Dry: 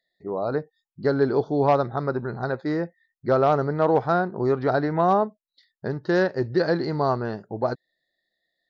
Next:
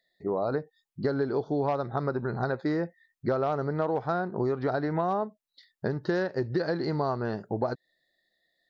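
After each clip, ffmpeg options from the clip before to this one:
ffmpeg -i in.wav -af "acompressor=threshold=-28dB:ratio=6,volume=3dB" out.wav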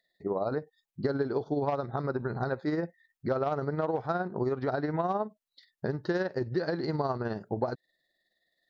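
ffmpeg -i in.wav -af "tremolo=f=19:d=0.46" out.wav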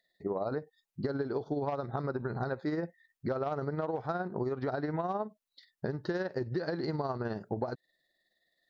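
ffmpeg -i in.wav -af "acompressor=threshold=-30dB:ratio=3" out.wav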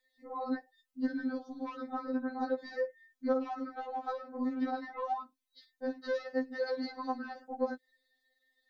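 ffmpeg -i in.wav -af "afftfilt=real='re*3.46*eq(mod(b,12),0)':imag='im*3.46*eq(mod(b,12),0)':win_size=2048:overlap=0.75,volume=2dB" out.wav

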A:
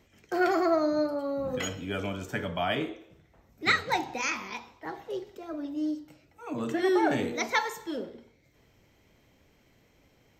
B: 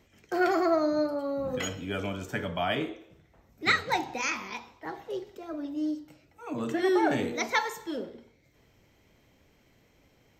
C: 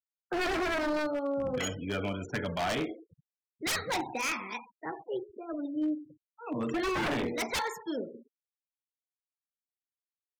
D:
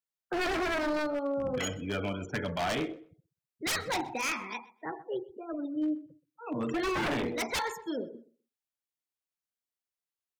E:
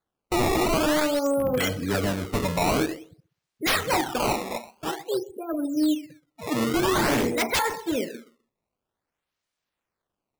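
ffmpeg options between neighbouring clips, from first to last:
ffmpeg -i in.wav -af anull out.wav
ffmpeg -i in.wav -af "acrusher=bits=8:mix=0:aa=0.000001,afftfilt=real='re*gte(hypot(re,im),0.01)':imag='im*gte(hypot(re,im),0.01)':win_size=1024:overlap=0.75,aeval=exprs='0.0562*(abs(mod(val(0)/0.0562+3,4)-2)-1)':channel_layout=same" out.wav
ffmpeg -i in.wav -filter_complex "[0:a]asplit=2[link_01][link_02];[link_02]adelay=127,lowpass=frequency=3700:poles=1,volume=-20dB,asplit=2[link_03][link_04];[link_04]adelay=127,lowpass=frequency=3700:poles=1,volume=0.21[link_05];[link_01][link_03][link_05]amix=inputs=3:normalize=0" out.wav
ffmpeg -i in.wav -af "acrusher=samples=16:mix=1:aa=0.000001:lfo=1:lforange=25.6:lforate=0.5,volume=8dB" out.wav

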